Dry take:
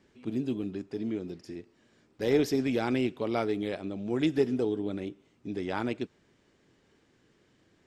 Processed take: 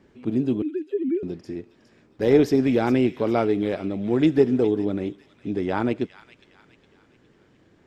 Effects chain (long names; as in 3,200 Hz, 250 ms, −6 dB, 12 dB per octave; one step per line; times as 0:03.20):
0:00.62–0:01.23: three sine waves on the formant tracks
high-shelf EQ 2,300 Hz −10 dB
on a send: delay with a high-pass on its return 411 ms, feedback 44%, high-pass 2,000 Hz, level −11 dB
on the sum: level +8.5 dB